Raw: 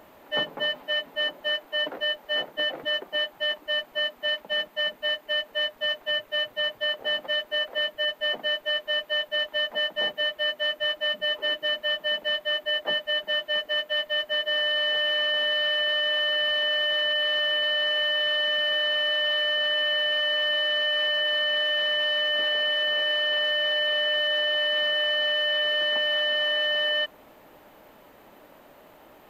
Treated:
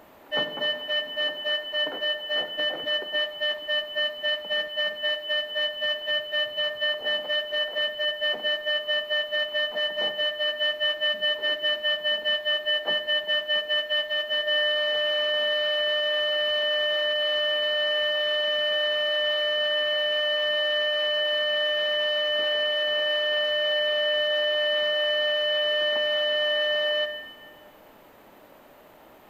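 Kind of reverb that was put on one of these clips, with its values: Schroeder reverb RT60 1.3 s, combs from 25 ms, DRR 10.5 dB

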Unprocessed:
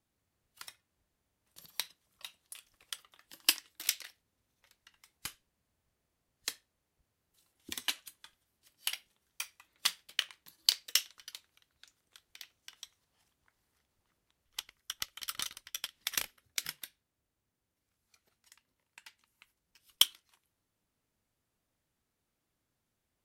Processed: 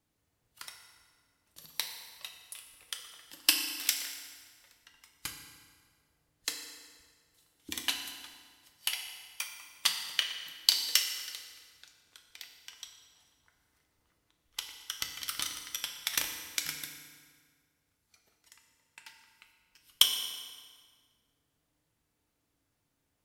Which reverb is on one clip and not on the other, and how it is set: FDN reverb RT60 1.8 s, low-frequency decay 1.05×, high-frequency decay 0.8×, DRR 3 dB; trim +2 dB

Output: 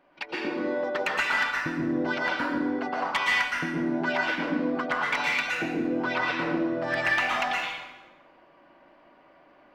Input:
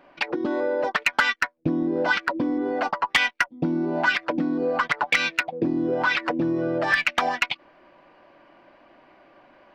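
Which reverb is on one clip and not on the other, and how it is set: plate-style reverb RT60 1.2 s, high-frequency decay 0.75×, pre-delay 105 ms, DRR -5.5 dB; trim -9.5 dB

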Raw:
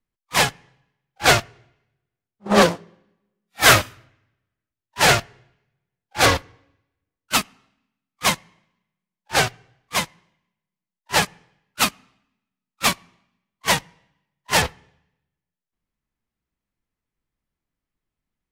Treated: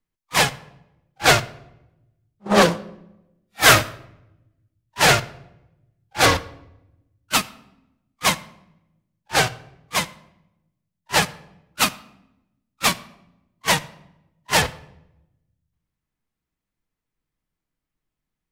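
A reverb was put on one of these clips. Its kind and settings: simulated room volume 3200 m³, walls furnished, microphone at 0.54 m

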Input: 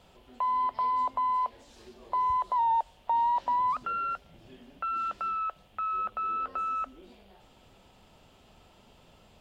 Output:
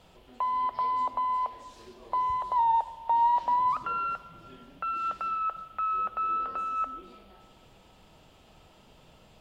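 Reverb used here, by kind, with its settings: simulated room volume 2500 m³, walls mixed, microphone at 0.59 m; trim +1 dB

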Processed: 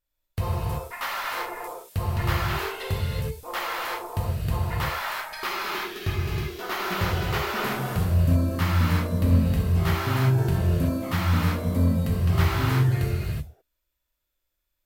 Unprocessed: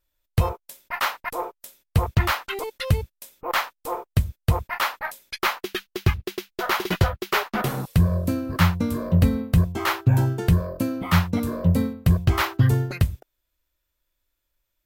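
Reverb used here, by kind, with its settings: gated-style reverb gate 400 ms flat, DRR -6.5 dB; trim -9.5 dB

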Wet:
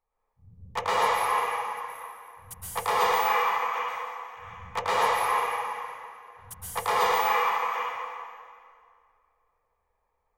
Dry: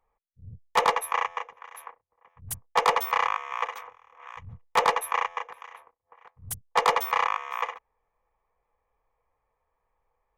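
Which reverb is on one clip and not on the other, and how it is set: plate-style reverb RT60 2.2 s, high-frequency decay 0.8×, pre-delay 105 ms, DRR -9.5 dB; trim -9 dB

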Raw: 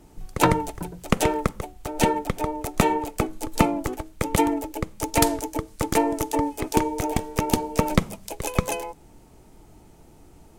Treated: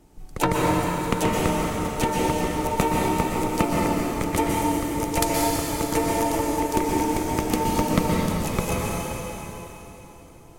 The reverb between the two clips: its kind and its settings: plate-style reverb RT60 3.6 s, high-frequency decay 0.95×, pre-delay 110 ms, DRR -4 dB; trim -4 dB

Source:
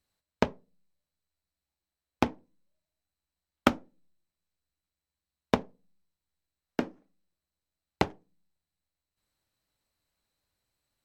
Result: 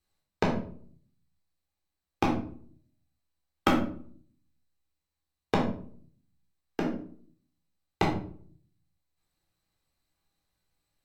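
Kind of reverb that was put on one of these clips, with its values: simulated room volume 550 m³, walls furnished, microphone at 3.8 m; trim -4.5 dB

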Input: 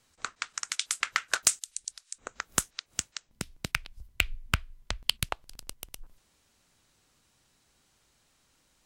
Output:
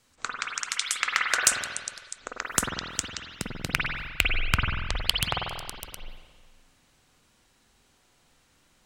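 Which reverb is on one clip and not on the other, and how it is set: spring tank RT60 1.5 s, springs 46/50 ms, chirp 40 ms, DRR -1.5 dB; trim +2 dB

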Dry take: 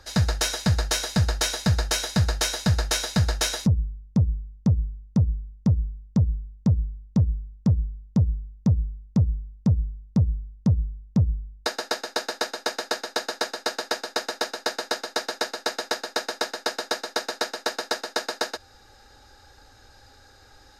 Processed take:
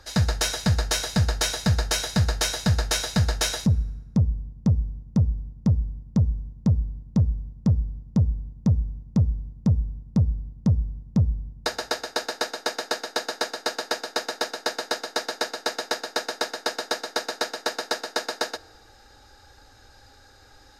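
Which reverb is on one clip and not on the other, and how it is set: FDN reverb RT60 1.4 s, low-frequency decay 1.25×, high-frequency decay 0.7×, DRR 19.5 dB

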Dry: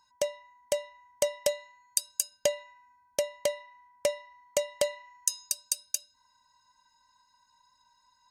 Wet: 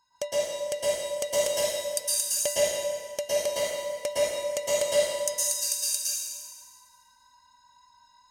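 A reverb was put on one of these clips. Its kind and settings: plate-style reverb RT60 1.6 s, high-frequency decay 0.95×, pre-delay 100 ms, DRR -9 dB; trim -3.5 dB

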